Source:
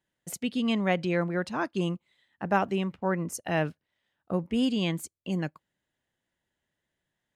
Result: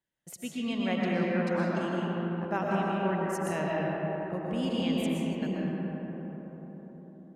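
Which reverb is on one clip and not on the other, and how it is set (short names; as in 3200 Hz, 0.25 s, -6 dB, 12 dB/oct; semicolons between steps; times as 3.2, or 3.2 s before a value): digital reverb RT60 5 s, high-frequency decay 0.3×, pre-delay 80 ms, DRR -5 dB; gain -7.5 dB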